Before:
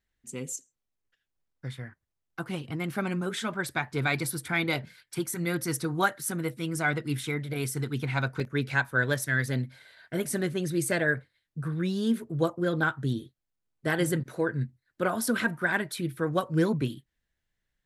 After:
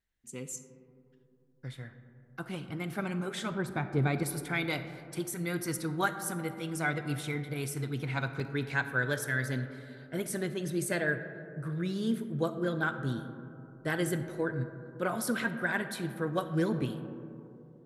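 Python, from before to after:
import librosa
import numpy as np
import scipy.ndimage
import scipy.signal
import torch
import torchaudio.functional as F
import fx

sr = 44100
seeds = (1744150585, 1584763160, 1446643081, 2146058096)

y = fx.tilt_shelf(x, sr, db=8.0, hz=880.0, at=(3.51, 4.23))
y = fx.rev_freeverb(y, sr, rt60_s=3.0, hf_ratio=0.25, predelay_ms=5, drr_db=9.5)
y = F.gain(torch.from_numpy(y), -4.5).numpy()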